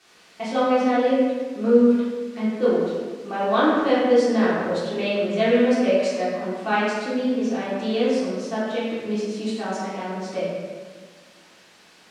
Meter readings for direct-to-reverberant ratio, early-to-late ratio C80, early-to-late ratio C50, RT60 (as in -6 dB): -12.5 dB, 0.5 dB, -2.0 dB, 1.5 s